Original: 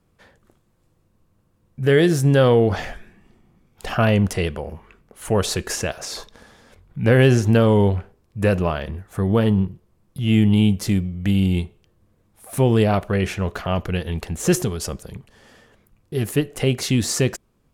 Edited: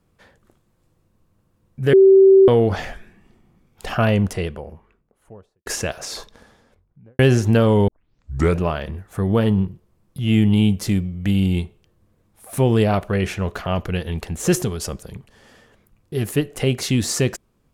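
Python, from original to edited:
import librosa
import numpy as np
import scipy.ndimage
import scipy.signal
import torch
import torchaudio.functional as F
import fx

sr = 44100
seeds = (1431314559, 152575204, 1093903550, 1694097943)

y = fx.studio_fade_out(x, sr, start_s=3.9, length_s=1.76)
y = fx.studio_fade_out(y, sr, start_s=6.17, length_s=1.02)
y = fx.edit(y, sr, fx.bleep(start_s=1.93, length_s=0.55, hz=386.0, db=-6.5),
    fx.tape_start(start_s=7.88, length_s=0.72), tone=tone)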